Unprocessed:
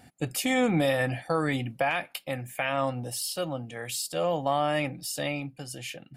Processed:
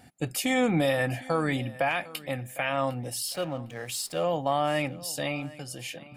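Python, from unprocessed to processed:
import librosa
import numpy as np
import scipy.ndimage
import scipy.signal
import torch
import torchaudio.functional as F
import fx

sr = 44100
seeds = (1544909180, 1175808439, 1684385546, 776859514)

y = fx.backlash(x, sr, play_db=-42.5, at=(3.27, 4.22), fade=0.02)
y = fx.echo_feedback(y, sr, ms=755, feedback_pct=22, wet_db=-19.5)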